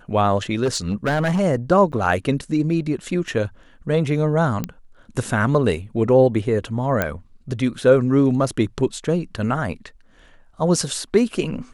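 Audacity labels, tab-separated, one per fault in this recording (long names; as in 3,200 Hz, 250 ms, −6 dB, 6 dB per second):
0.640000	1.410000	clipping −15.5 dBFS
1.920000	1.930000	drop-out 8.3 ms
4.640000	4.640000	click −11 dBFS
7.020000	7.020000	click −6 dBFS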